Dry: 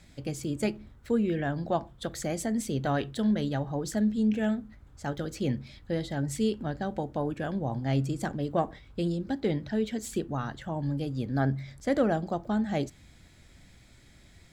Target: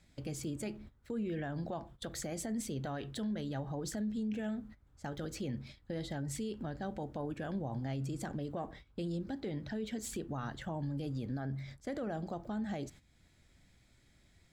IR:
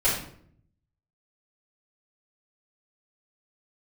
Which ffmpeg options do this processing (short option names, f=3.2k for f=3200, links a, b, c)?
-af "agate=range=-14dB:threshold=-45dB:ratio=16:detection=peak,acompressor=threshold=-51dB:ratio=1.5,alimiter=level_in=10dB:limit=-24dB:level=0:latency=1:release=31,volume=-10dB,volume=3.5dB"